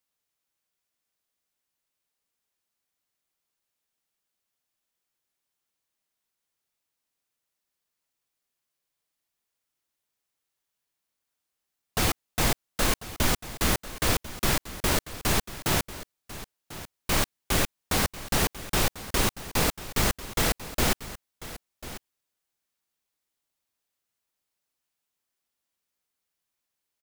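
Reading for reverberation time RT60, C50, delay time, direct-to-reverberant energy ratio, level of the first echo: no reverb audible, no reverb audible, 1,044 ms, no reverb audible, −15.5 dB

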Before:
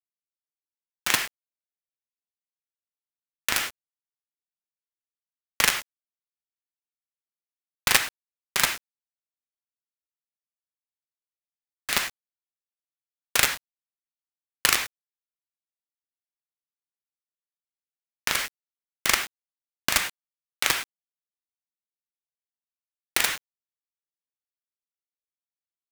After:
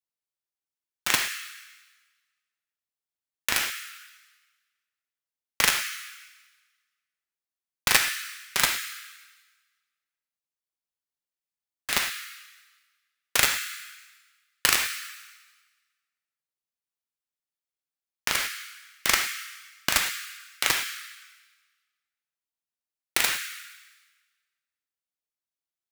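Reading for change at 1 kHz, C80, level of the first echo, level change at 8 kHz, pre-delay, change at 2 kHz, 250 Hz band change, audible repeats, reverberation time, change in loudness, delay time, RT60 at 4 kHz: −0.5 dB, 10.0 dB, no echo audible, 0.0 dB, 4 ms, +0.5 dB, −1.0 dB, no echo audible, 1.3 s, −0.5 dB, no echo audible, 1.3 s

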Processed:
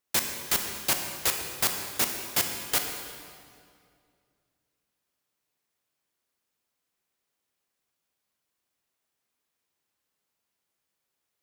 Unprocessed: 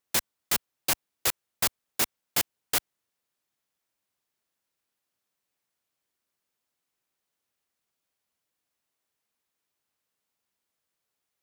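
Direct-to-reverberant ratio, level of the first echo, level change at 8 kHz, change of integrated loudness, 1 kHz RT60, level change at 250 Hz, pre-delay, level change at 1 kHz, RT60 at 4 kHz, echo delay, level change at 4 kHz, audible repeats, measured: 3.5 dB, no echo audible, +1.5 dB, +1.0 dB, 2.1 s, +2.0 dB, 22 ms, +1.5 dB, 1.8 s, no echo audible, +1.5 dB, no echo audible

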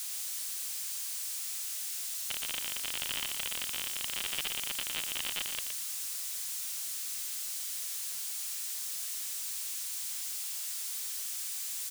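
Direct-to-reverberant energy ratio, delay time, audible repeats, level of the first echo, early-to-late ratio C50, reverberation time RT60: no reverb audible, 117 ms, 2, −7.0 dB, no reverb audible, no reverb audible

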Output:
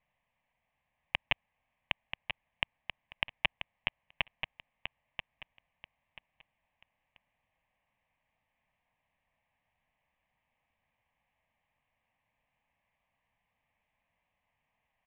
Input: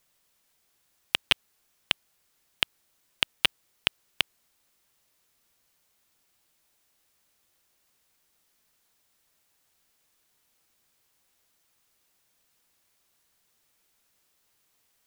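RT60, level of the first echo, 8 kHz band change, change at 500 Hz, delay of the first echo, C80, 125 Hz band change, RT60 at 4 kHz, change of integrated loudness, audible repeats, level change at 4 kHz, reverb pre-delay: no reverb audible, −8.0 dB, below −30 dB, −4.0 dB, 985 ms, no reverb audible, −1.0 dB, no reverb audible, −8.5 dB, 3, −10.5 dB, no reverb audible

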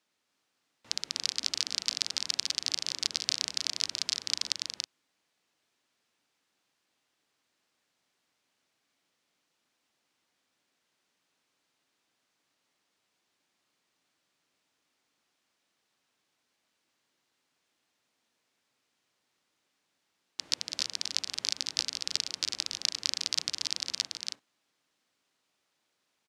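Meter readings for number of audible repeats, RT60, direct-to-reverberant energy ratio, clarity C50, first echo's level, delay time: 2, no reverb audible, no reverb audible, no reverb audible, −4.5 dB, 284 ms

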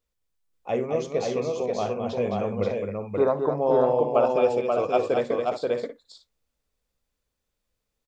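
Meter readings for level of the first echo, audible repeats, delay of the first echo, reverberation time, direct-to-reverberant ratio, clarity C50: −16.5 dB, 4, 55 ms, no reverb audible, no reverb audible, no reverb audible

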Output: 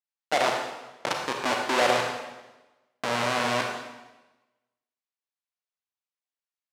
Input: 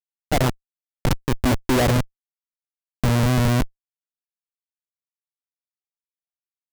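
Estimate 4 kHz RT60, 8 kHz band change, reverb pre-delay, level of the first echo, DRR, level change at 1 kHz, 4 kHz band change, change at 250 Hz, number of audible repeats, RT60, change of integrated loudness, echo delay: 1.0 s, −4.0 dB, 31 ms, no echo audible, 1.0 dB, +1.5 dB, +0.5 dB, −13.0 dB, no echo audible, 1.1 s, −5.0 dB, no echo audible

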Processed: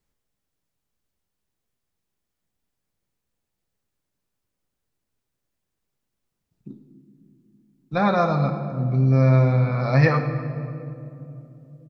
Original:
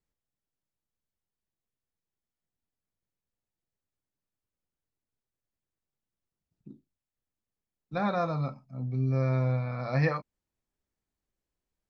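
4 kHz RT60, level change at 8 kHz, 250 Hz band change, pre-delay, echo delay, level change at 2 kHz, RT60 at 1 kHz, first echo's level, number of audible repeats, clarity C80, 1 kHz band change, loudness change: 1.5 s, can't be measured, +10.0 dB, 5 ms, 106 ms, +9.5 dB, 2.4 s, −15.0 dB, 1, 9.0 dB, +9.5 dB, +9.5 dB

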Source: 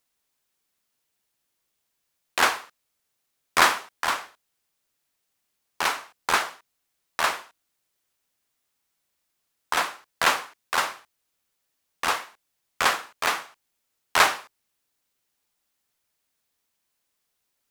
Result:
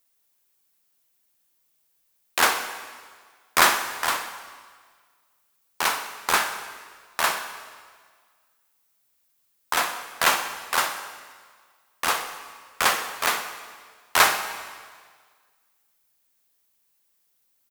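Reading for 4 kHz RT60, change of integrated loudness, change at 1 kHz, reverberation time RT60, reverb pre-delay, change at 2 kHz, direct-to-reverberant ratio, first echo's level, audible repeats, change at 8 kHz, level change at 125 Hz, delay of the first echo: 1.6 s, +1.0 dB, +1.0 dB, 1.7 s, 7 ms, +1.0 dB, 7.5 dB, −15.0 dB, 2, +4.5 dB, +1.0 dB, 63 ms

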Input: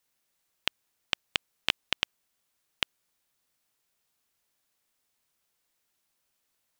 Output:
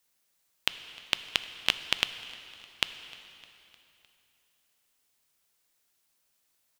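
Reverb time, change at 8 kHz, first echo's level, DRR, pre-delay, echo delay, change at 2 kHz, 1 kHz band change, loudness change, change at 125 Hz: 2.9 s, +3.5 dB, −23.0 dB, 10.5 dB, 5 ms, 305 ms, +1.5 dB, +1.0 dB, +1.5 dB, +0.5 dB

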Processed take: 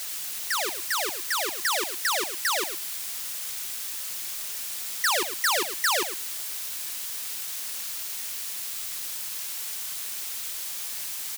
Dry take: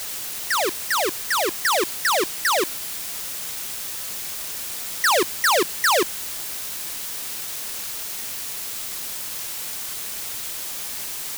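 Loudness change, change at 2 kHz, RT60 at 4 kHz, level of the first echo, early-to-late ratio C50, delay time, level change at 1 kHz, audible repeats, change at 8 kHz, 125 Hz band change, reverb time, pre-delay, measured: −4.0 dB, −5.0 dB, no reverb audible, −11.0 dB, no reverb audible, 110 ms, −7.0 dB, 1, −3.0 dB, below −10 dB, no reverb audible, no reverb audible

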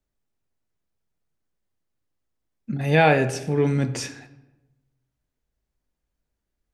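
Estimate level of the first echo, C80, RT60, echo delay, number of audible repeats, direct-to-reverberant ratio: no echo audible, 15.5 dB, 1.0 s, no echo audible, no echo audible, 11.5 dB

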